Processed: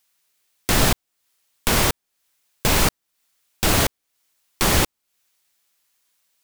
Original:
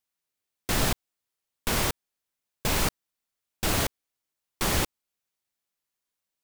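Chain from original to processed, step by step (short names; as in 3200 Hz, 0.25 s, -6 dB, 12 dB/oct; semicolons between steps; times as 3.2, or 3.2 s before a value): mismatched tape noise reduction encoder only; gain +7.5 dB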